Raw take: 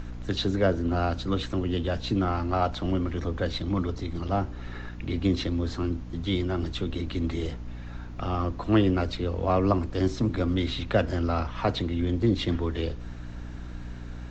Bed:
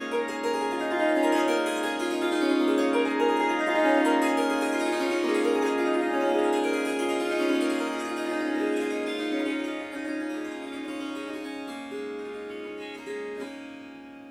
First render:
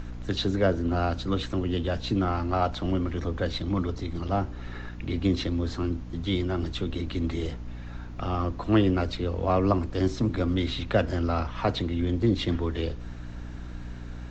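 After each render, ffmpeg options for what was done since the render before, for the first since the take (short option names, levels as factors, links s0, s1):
-af anull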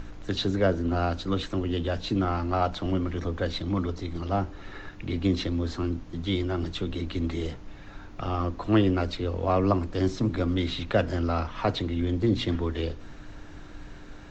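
-af "bandreject=f=60:t=h:w=4,bandreject=f=120:t=h:w=4,bandreject=f=180:t=h:w=4,bandreject=f=240:t=h:w=4"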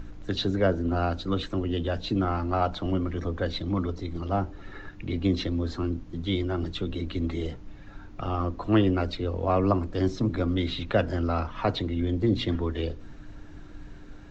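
-af "afftdn=nr=6:nf=-44"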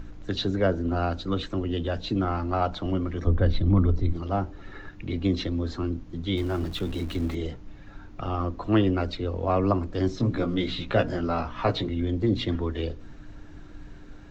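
-filter_complex "[0:a]asettb=1/sr,asplit=3[s0][s1][s2];[s0]atrim=end=3.274[s3];[s1]atrim=start=3.27:end=4.13,asetpts=PTS-STARTPTS,afade=t=in:d=0.004:c=qsin,afade=t=out:st=0.856:d=0.004:c=qsin,aemphasis=mode=reproduction:type=bsi[s4];[s2]atrim=start=4.126[s5];[s3][s4]acrossfade=d=0.004:c1=hsin:c2=qsin[s6];[s6][s5]acrossfade=d=0.004:c1=qsin:c2=hsin,asettb=1/sr,asplit=3[s7][s8][s9];[s7]atrim=end=6.374[s10];[s8]atrim=start=6.37:end=7.35,asetpts=PTS-STARTPTS,afade=t=in:d=0.004:c=qsin,afade=t=out:st=0.976:d=0.004:c=qsin,aeval=exprs='val(0)+0.5*0.0119*sgn(val(0))':c=same[s11];[s9]atrim=start=7.346[s12];[s10][s11]acrossfade=d=0.004:c1=hsin:c2=qsin[s13];[s13][s12]acrossfade=d=0.004:c1=qsin:c2=hsin,asettb=1/sr,asplit=3[s14][s15][s16];[s14]atrim=end=10.184[s17];[s15]atrim=start=10.18:end=11.89,asetpts=PTS-STARTPTS,afade=t=in:d=0.004:c=qsin,afade=t=out:st=1.706:d=0.004:c=qsin,asplit=2[s18][s19];[s19]adelay=17,volume=0.668[s20];[s18][s20]amix=inputs=2:normalize=0,atrim=end_sample=75411[s21];[s16]atrim=start=11.886[s22];[s17][s21]acrossfade=d=0.004:c1=hsin:c2=qsin[s23];[s23][s22]acrossfade=d=0.004:c1=qsin:c2=hsin"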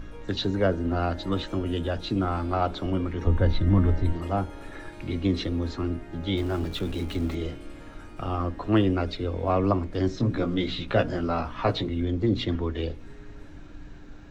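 -filter_complex "[1:a]volume=0.106[s0];[0:a][s0]amix=inputs=2:normalize=0"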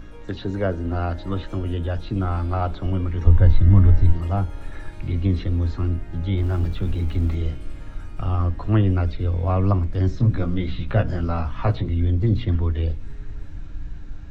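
-filter_complex "[0:a]acrossover=split=2600[s0][s1];[s1]acompressor=threshold=0.00398:ratio=4:attack=1:release=60[s2];[s0][s2]amix=inputs=2:normalize=0,asubboost=boost=4:cutoff=150"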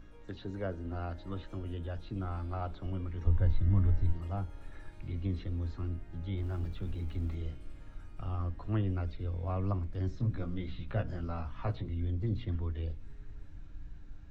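-af "volume=0.211"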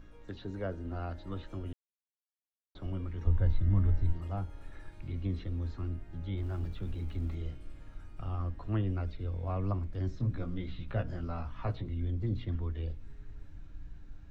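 -filter_complex "[0:a]asplit=3[s0][s1][s2];[s0]atrim=end=1.73,asetpts=PTS-STARTPTS,afade=t=out:st=1.726:d=0.004:c=hsin[s3];[s1]atrim=start=1.73:end=2.75,asetpts=PTS-STARTPTS,volume=0[s4];[s2]atrim=start=2.75,asetpts=PTS-STARTPTS,afade=t=in:d=0.004:c=hsin[s5];[s3][s4][s5]concat=n=3:v=0:a=1"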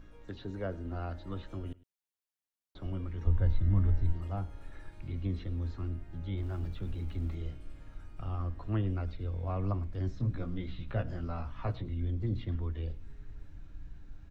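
-af "aecho=1:1:105:0.0841"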